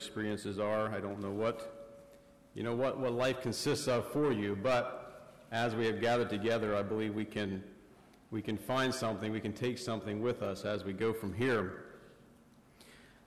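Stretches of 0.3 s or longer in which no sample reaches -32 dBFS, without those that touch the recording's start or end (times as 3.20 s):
1.51–2.58 s
4.88–5.53 s
7.56–8.33 s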